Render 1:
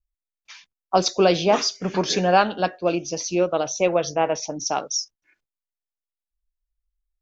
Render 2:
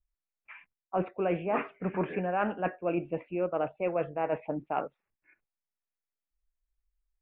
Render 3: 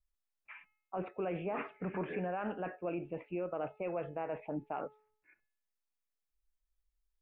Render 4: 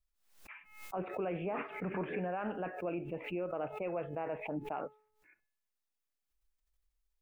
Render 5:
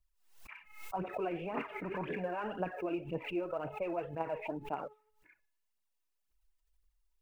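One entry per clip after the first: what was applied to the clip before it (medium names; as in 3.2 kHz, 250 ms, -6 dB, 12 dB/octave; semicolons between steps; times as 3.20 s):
steep low-pass 2.6 kHz 72 dB/octave; reverse; compression 6:1, threshold -25 dBFS, peak gain reduction 13 dB; reverse; trim -1.5 dB
peak limiter -26 dBFS, peak gain reduction 9.5 dB; feedback comb 430 Hz, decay 0.62 s, mix 60%; trim +5 dB
swell ahead of each attack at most 91 dB/s
small resonant body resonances 960/2800 Hz, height 8 dB; phaser 1.9 Hz, delay 3.4 ms, feedback 57%; trim -1.5 dB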